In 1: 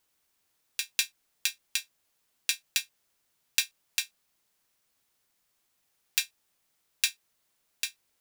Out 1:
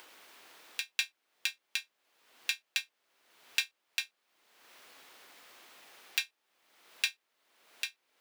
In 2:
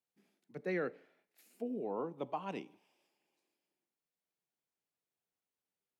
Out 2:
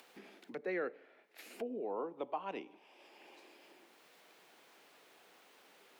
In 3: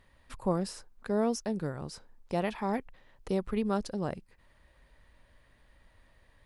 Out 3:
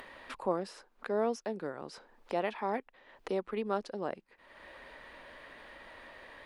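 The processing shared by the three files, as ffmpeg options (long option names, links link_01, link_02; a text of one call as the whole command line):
ffmpeg -i in.wav -filter_complex "[0:a]acrossover=split=260 4100:gain=0.0794 1 0.224[link_01][link_02][link_03];[link_01][link_02][link_03]amix=inputs=3:normalize=0,acompressor=mode=upward:threshold=-36dB:ratio=2.5" out.wav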